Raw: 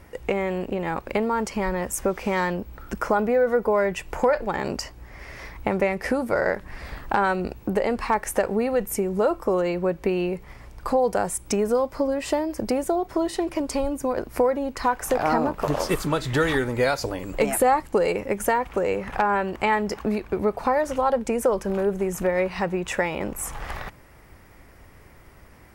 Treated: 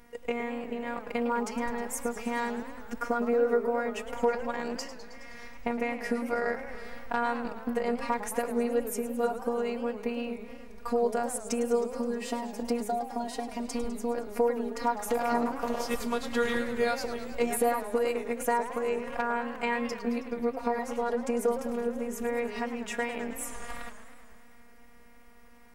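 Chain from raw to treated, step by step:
phases set to zero 237 Hz
feedback echo with a swinging delay time 106 ms, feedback 72%, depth 216 cents, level −12.5 dB
level −4.5 dB

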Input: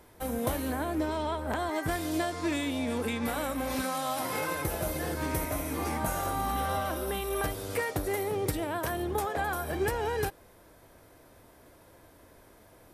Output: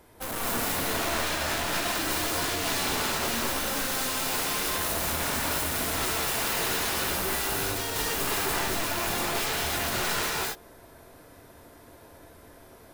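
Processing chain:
wrap-around overflow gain 28.5 dB
reverb whose tail is shaped and stops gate 270 ms rising, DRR −4 dB

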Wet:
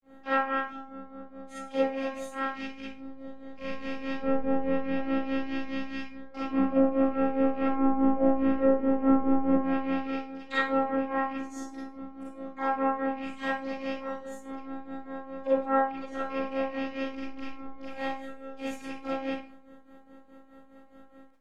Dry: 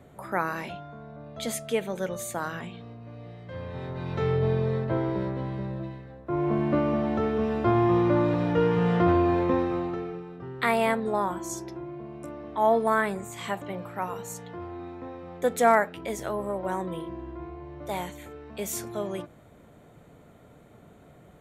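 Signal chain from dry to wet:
loose part that buzzes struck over −37 dBFS, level −24 dBFS
pitch-shifted copies added +3 semitones −10 dB, +12 semitones −8 dB
bass and treble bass +1 dB, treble −7 dB
treble cut that deepens with the level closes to 920 Hz, closed at −18 dBFS
phases set to zero 269 Hz
granular cloud 208 ms, grains 4.8 per second, pitch spread up and down by 0 semitones
four-comb reverb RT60 0.37 s, combs from 33 ms, DRR −9 dB
level −6.5 dB

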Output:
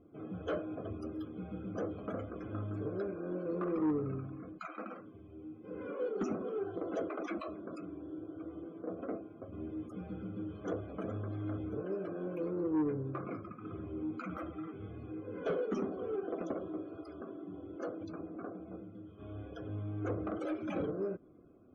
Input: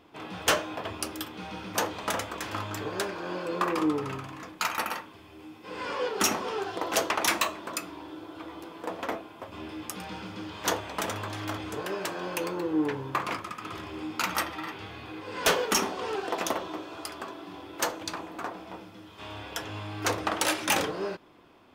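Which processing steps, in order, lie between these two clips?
spectral peaks only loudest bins 64
moving average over 48 samples
soft clipping −27.5 dBFS, distortion −15 dB
level +1 dB

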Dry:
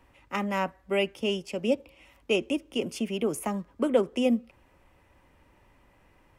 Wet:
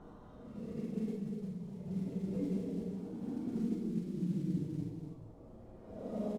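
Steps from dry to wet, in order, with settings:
sample-and-hold swept by an LFO 9×, swing 100% 0.74 Hz
treble cut that deepens with the level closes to 310 Hz, closed at −22 dBFS
parametric band 2,900 Hz −14.5 dB 2.5 octaves
hum removal 96.9 Hz, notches 30
output level in coarse steps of 18 dB
extreme stretch with random phases 12×, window 0.10 s, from 0:02.94
reverb reduction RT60 0.74 s
formants moved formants −6 semitones
noise that follows the level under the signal 26 dB
high-frequency loss of the air 51 metres
single-tap delay 249 ms −7 dB
on a send at −1 dB: convolution reverb RT60 0.35 s, pre-delay 31 ms

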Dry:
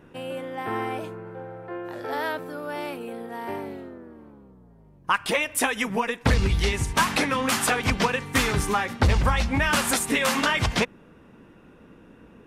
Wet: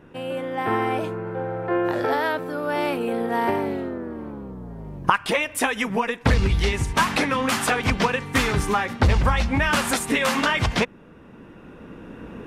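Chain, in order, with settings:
camcorder AGC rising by 6.9 dB per second
high-shelf EQ 5,200 Hz −6 dB
level +2 dB

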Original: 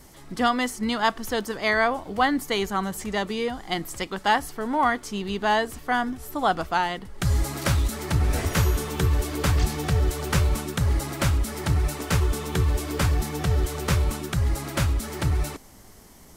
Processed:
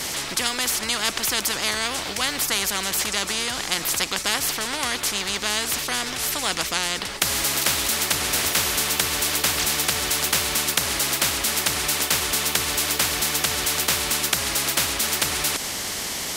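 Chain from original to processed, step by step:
meter weighting curve D
every bin compressed towards the loudest bin 4 to 1
level −1 dB

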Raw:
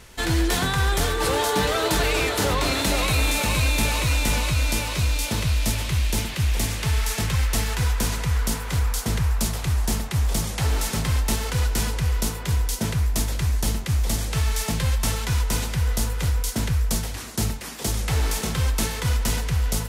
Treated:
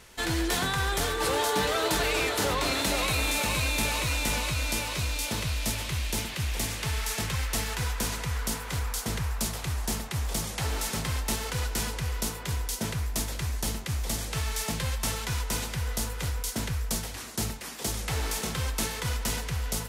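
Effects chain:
low-shelf EQ 190 Hz −6.5 dB
level −3.5 dB

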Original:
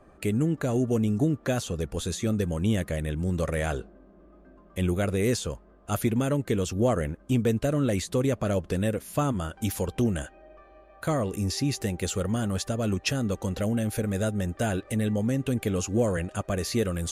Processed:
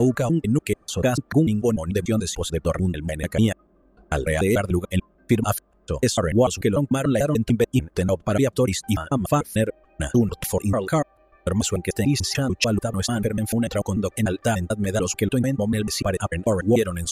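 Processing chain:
slices reordered back to front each 147 ms, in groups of 6
reverb reduction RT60 1.6 s
level +7 dB

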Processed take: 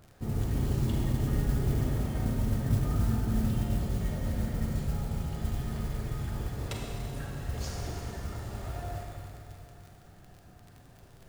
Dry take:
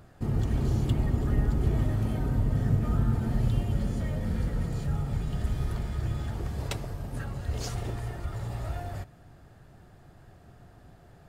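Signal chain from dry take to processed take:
surface crackle 35 per second −36 dBFS
four-comb reverb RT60 2.9 s, combs from 32 ms, DRR −1 dB
noise that follows the level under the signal 23 dB
level −5 dB

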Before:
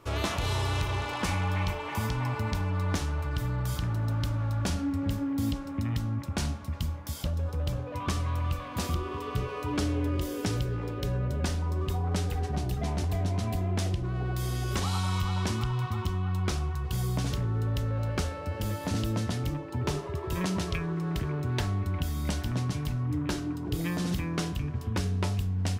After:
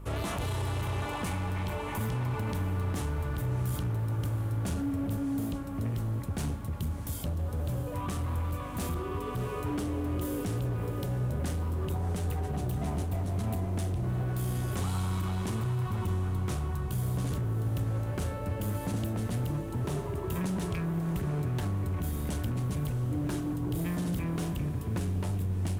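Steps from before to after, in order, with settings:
high-pass filter 91 Hz 12 dB per octave
mains hum 50 Hz, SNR 16 dB
in parallel at +1 dB: compressor whose output falls as the input rises −32 dBFS
on the sum: drawn EQ curve 130 Hz 0 dB, 3,300 Hz −8 dB, 5,200 Hz −12 dB, 9,300 Hz 0 dB
hard clipping −24.5 dBFS, distortion −14 dB
on a send: feedback delay with all-pass diffusion 669 ms, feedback 58%, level −12 dB
on the sum: level −3.5 dB

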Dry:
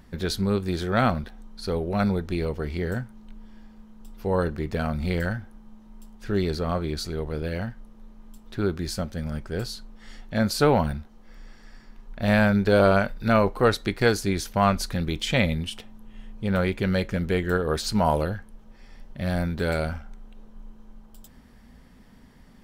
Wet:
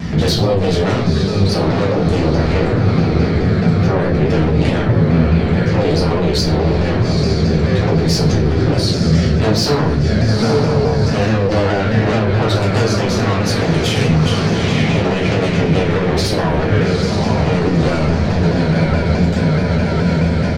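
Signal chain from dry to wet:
tempo change 1.1×
low-pass with resonance 5,600 Hz, resonance Q 1.8
parametric band 2,300 Hz +6 dB 1.1 octaves
feedback delay with all-pass diffusion 858 ms, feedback 53%, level −8.5 dB
downward compressor 8 to 1, threshold −24 dBFS, peak gain reduction 11.5 dB
low-shelf EQ 340 Hz +12 dB
sine wavefolder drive 15 dB, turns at −4.5 dBFS
high-pass filter 80 Hz 24 dB per octave
brickwall limiter −14 dBFS, peak gain reduction 15.5 dB
rectangular room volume 63 cubic metres, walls mixed, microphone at 1.4 metres
pitch modulation by a square or saw wave saw down 4.7 Hz, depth 100 cents
level −2 dB

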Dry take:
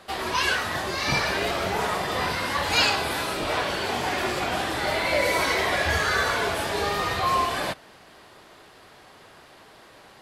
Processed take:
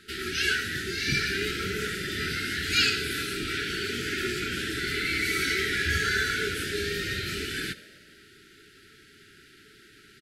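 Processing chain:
brick-wall band-stop 450–1,300 Hz
echo with shifted repeats 82 ms, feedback 65%, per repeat +41 Hz, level −19 dB
level −1.5 dB

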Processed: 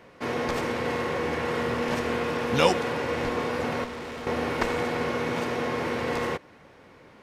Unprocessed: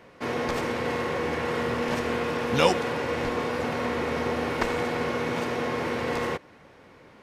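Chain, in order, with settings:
0:03.84–0:04.27: tube saturation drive 34 dB, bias 0.75

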